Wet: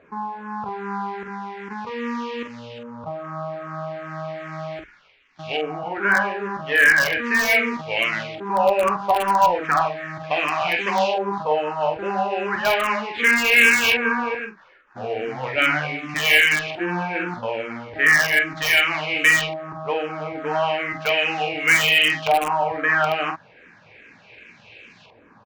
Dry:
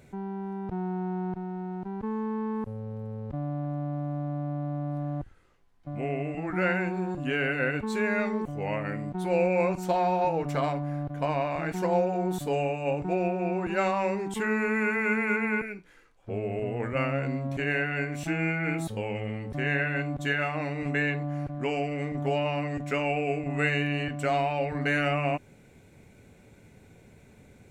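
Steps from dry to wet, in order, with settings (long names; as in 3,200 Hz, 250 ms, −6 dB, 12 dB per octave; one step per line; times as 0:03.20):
variable-slope delta modulation 32 kbit/s
spectral tilt +4 dB per octave
auto-filter low-pass saw up 0.33 Hz 940–2,700 Hz
on a send: ambience of single reflections 19 ms −13 dB, 50 ms −6 dB
on the sum: wrong playback speed 44.1 kHz file played as 48 kHz
in parallel at −10 dB: wrap-around overflow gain 15.5 dB
on the sum: frequency shifter mixed with the dry sound −2.5 Hz
level +7 dB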